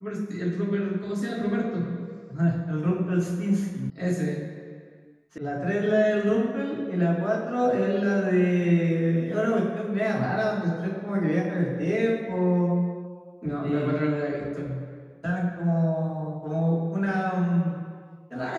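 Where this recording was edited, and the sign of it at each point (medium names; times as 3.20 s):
3.90 s: sound stops dead
5.38 s: sound stops dead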